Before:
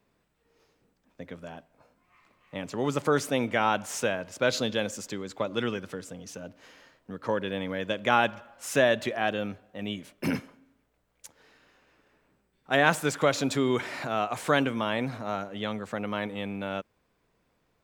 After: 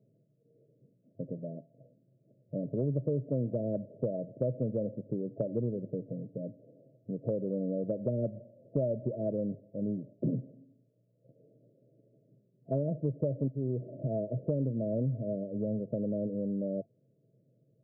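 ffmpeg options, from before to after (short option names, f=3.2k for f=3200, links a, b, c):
-filter_complex "[0:a]asplit=2[a][b];[a]atrim=end=13.48,asetpts=PTS-STARTPTS,afade=t=out:st=13.476:d=0.004:c=hsin:silence=0.223872[c];[b]atrim=start=13.48,asetpts=PTS-STARTPTS,afade=t=in:d=0.72:silence=0.223872[d];[c][d]concat=n=2:v=0:a=1,afftfilt=real='re*between(b*sr/4096,100,670)':imag='im*between(b*sr/4096,100,670)':win_size=4096:overlap=0.75,equalizer=f=130:w=2.7:g=13,acompressor=threshold=-30dB:ratio=4,volume=1.5dB"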